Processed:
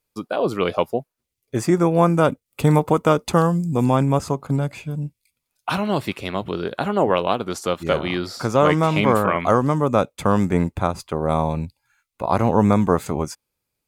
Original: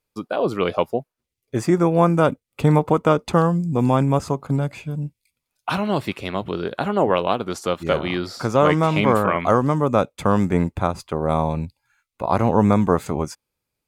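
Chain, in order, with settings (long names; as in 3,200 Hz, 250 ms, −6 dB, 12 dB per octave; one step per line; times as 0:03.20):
high-shelf EQ 6,200 Hz +5.5 dB, from 0:02.46 +11 dB, from 0:03.85 +4 dB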